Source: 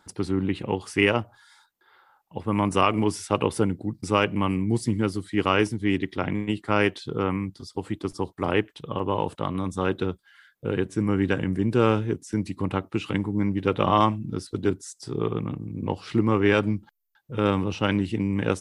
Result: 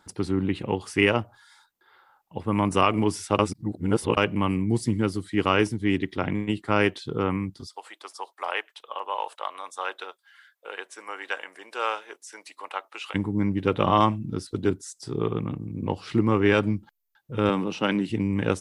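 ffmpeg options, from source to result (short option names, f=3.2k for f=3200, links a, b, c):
-filter_complex "[0:a]asplit=3[a][b][c];[a]afade=t=out:st=7.66:d=0.02[d];[b]highpass=f=650:w=0.5412,highpass=f=650:w=1.3066,afade=t=in:st=7.66:d=0.02,afade=t=out:st=13.14:d=0.02[e];[c]afade=t=in:st=13.14:d=0.02[f];[d][e][f]amix=inputs=3:normalize=0,asettb=1/sr,asplit=3[g][h][i];[g]atrim=end=17.494[j];[h]atrim=start=17.49:end=18.1,asetpts=PTS-STARTPTS,afade=t=in:d=0.004:c=qsin,afade=t=out:st=0.606:d=0.004:c=qsin,highpass=f=160:w=0.5412,highpass=f=160:w=1.3066[k];[i]atrim=start=18.096[l];[j][k]acrossfade=d=0.004:c1=hsin:c2=qsin[m];[m][l]acrossfade=d=0.004:c1=qsin:c2=hsin,asplit=3[n][o][p];[n]atrim=end=3.392[q];[o]atrim=start=3.388:end=4.172,asetpts=PTS-STARTPTS,areverse[r];[p]atrim=start=4.168[s];[q][r]acrossfade=d=0.004:c1=hsin:c2=hsin[t];[t][s]acrossfade=d=0.004:c1=hsin:c2=hsin"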